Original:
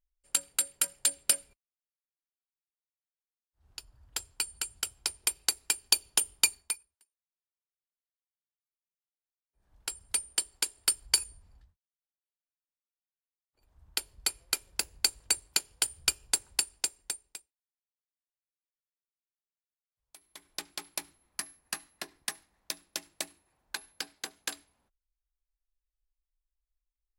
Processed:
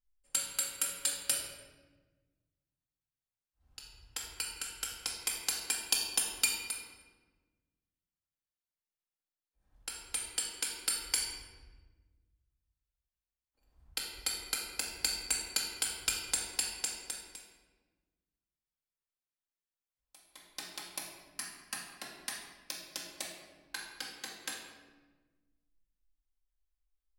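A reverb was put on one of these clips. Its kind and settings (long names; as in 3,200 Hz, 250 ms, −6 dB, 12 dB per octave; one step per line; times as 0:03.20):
rectangular room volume 940 cubic metres, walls mixed, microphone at 2.1 metres
level −6.5 dB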